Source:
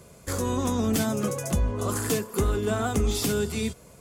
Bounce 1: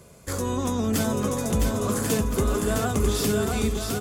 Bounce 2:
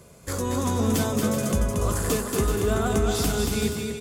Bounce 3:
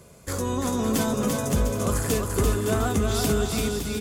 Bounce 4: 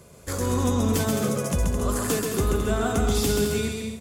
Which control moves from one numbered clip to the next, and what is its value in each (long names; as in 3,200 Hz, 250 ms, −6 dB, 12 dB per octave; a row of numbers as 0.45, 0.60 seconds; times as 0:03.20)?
bouncing-ball delay, first gap: 660, 230, 340, 130 milliseconds